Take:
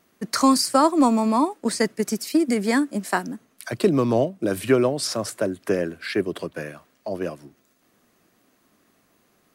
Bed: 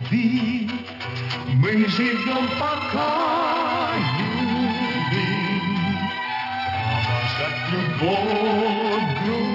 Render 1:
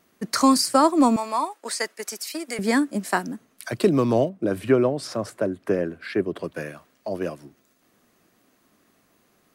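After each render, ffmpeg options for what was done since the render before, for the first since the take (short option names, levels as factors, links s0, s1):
-filter_complex "[0:a]asettb=1/sr,asplit=3[s0][s1][s2];[s0]atrim=end=1.164[s3];[s1]atrim=start=1.16:end=2.59,asetpts=PTS-STARTPTS,afade=t=in:d=0.004:c=qsin,afade=t=out:st=1.426:d=0.004:c=qsin,highpass=700[s4];[s2]atrim=start=2.586[s5];[s3][s4]acrossfade=d=0.004:c1=hsin:c2=qsin[s6];[s6][s5]acrossfade=d=0.004:c1=qsin:c2=hsin,asettb=1/sr,asplit=3[s7][s8][s9];[s7]atrim=end=4.294[s10];[s8]atrim=start=4.29:end=6.44,asetpts=PTS-STARTPTS,afade=t=in:d=0.004:c=qsin,afade=t=out:st=2.146:d=0.004:c=qsin,highshelf=f=2800:g=-11.5[s11];[s9]atrim=start=6.436[s12];[s10][s11]acrossfade=d=0.004:c1=hsin:c2=qsin[s13];[s13][s12]acrossfade=d=0.004:c1=qsin:c2=hsin"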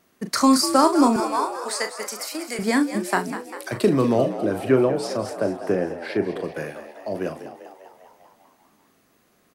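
-filter_complex "[0:a]asplit=2[s0][s1];[s1]adelay=38,volume=0.355[s2];[s0][s2]amix=inputs=2:normalize=0,asplit=9[s3][s4][s5][s6][s7][s8][s9][s10][s11];[s4]adelay=198,afreqshift=67,volume=0.251[s12];[s5]adelay=396,afreqshift=134,volume=0.16[s13];[s6]adelay=594,afreqshift=201,volume=0.102[s14];[s7]adelay=792,afreqshift=268,volume=0.0661[s15];[s8]adelay=990,afreqshift=335,volume=0.0422[s16];[s9]adelay=1188,afreqshift=402,volume=0.0269[s17];[s10]adelay=1386,afreqshift=469,volume=0.0172[s18];[s11]adelay=1584,afreqshift=536,volume=0.0111[s19];[s3][s12][s13][s14][s15][s16][s17][s18][s19]amix=inputs=9:normalize=0"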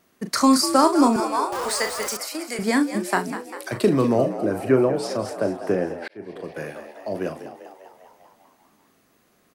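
-filter_complex "[0:a]asettb=1/sr,asplit=3[s0][s1][s2];[s0]atrim=end=1.524[s3];[s1]atrim=start=1.52:end=2.17,asetpts=PTS-STARTPTS,afade=t=in:d=0.004:c=qsin,afade=t=out:st=0.646:d=0.004:c=qsin,aeval=exprs='val(0)+0.5*0.0376*sgn(val(0))':c=same[s4];[s2]atrim=start=2.166[s5];[s3][s4]acrossfade=d=0.004:c1=hsin:c2=qsin[s6];[s6][s5]acrossfade=d=0.004:c1=qsin:c2=hsin,asettb=1/sr,asplit=3[s7][s8][s9];[s7]atrim=end=4.074[s10];[s8]atrim=start=4.07:end=4.94,asetpts=PTS-STARTPTS,afade=t=in:d=0.004:c=qsin,afade=t=out:st=0.866:d=0.004:c=qsin,equalizer=f=3400:w=2.8:g=-10[s11];[s9]atrim=start=4.936[s12];[s10][s11]acrossfade=d=0.004:c1=hsin:c2=qsin[s13];[s13][s12]acrossfade=d=0.004:c1=qsin:c2=hsin,asplit=2[s14][s15];[s14]atrim=end=6.08,asetpts=PTS-STARTPTS,afade=t=out:st=6.076:d=0.004:c=hsin[s16];[s15]atrim=start=6.08,asetpts=PTS-STARTPTS,afade=t=in:d=0.65[s17];[s16][s17]concat=n=2:v=0:a=1"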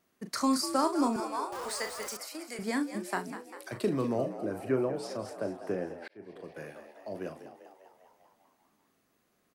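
-af "volume=0.282"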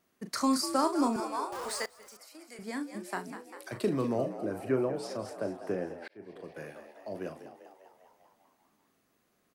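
-filter_complex "[0:a]asplit=2[s0][s1];[s0]atrim=end=1.86,asetpts=PTS-STARTPTS,afade=t=out:st=1.856:d=0.004:c=hsin:silence=0.1[s2];[s1]atrim=start=1.86,asetpts=PTS-STARTPTS,afade=t=in:d=1.94:silence=0.1[s3];[s2][s3]concat=n=2:v=0:a=1"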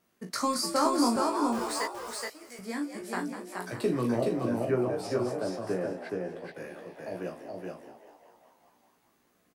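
-filter_complex "[0:a]asplit=2[s0][s1];[s1]adelay=17,volume=0.668[s2];[s0][s2]amix=inputs=2:normalize=0,asplit=2[s3][s4];[s4]aecho=0:1:423:0.708[s5];[s3][s5]amix=inputs=2:normalize=0"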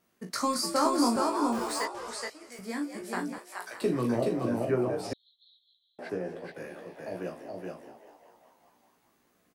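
-filter_complex "[0:a]asettb=1/sr,asplit=3[s0][s1][s2];[s0]atrim=end=1.854[s3];[s1]atrim=start=1.85:end=2.52,asetpts=PTS-STARTPTS,afade=t=in:d=0.004:c=qsin,afade=t=out:st=0.666:d=0.004:c=qsin,lowpass=9300[s4];[s2]atrim=start=2.516[s5];[s3][s4]acrossfade=d=0.004:c1=hsin:c2=qsin[s6];[s6][s5]acrossfade=d=0.004:c1=qsin:c2=hsin,asettb=1/sr,asplit=3[s7][s8][s9];[s7]atrim=end=3.384[s10];[s8]atrim=start=3.38:end=3.82,asetpts=PTS-STARTPTS,afade=t=in:d=0.004:c=qsin,afade=t=out:st=0.436:d=0.004:c=qsin,highpass=750[s11];[s9]atrim=start=3.816[s12];[s10][s11]acrossfade=d=0.004:c1=hsin:c2=qsin[s13];[s13][s12]acrossfade=d=0.004:c1=qsin:c2=hsin,asettb=1/sr,asplit=3[s14][s15][s16];[s14]atrim=end=5.134[s17];[s15]atrim=start=5.13:end=5.99,asetpts=PTS-STARTPTS,afade=t=in:d=0.004:c=qsin,afade=t=out:st=0.856:d=0.004:c=qsin,asuperpass=centerf=3700:order=12:qfactor=4[s18];[s16]atrim=start=5.986[s19];[s17][s18]acrossfade=d=0.004:c1=hsin:c2=qsin[s20];[s20][s19]acrossfade=d=0.004:c1=qsin:c2=hsin"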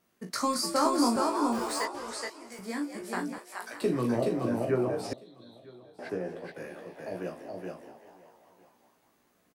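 -af "aecho=1:1:952:0.0708"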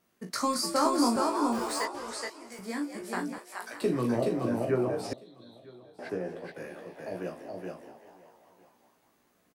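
-af anull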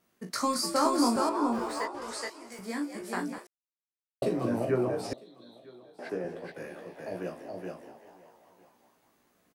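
-filter_complex "[0:a]asettb=1/sr,asplit=3[s0][s1][s2];[s0]atrim=end=1.294[s3];[s1]atrim=start=1.29:end=2.02,asetpts=PTS-STARTPTS,afade=t=in:d=0.004:c=qsin,afade=t=out:st=0.726:d=0.004:c=qsin,highshelf=f=3400:g=-10[s4];[s2]atrim=start=2.016[s5];[s3][s4]acrossfade=d=0.004:c1=hsin:c2=qsin[s6];[s6][s5]acrossfade=d=0.004:c1=qsin:c2=hsin,asettb=1/sr,asplit=3[s7][s8][s9];[s7]atrim=end=5.134[s10];[s8]atrim=start=5.13:end=6.25,asetpts=PTS-STARTPTS,afade=t=in:d=0.004:c=qsin,afade=t=out:st=1.116:d=0.004:c=qsin,highpass=170[s11];[s9]atrim=start=6.246[s12];[s10][s11]acrossfade=d=0.004:c1=hsin:c2=qsin[s13];[s13][s12]acrossfade=d=0.004:c1=qsin:c2=hsin,asplit=3[s14][s15][s16];[s14]atrim=end=3.47,asetpts=PTS-STARTPTS,afade=t=out:st=3.466:d=0.004:c=hsin[s17];[s15]atrim=start=3.47:end=4.22,asetpts=PTS-STARTPTS,volume=0[s18];[s16]atrim=start=4.22,asetpts=PTS-STARTPTS,afade=t=in:d=0.004:c=hsin[s19];[s17][s18][s19]concat=n=3:v=0:a=1"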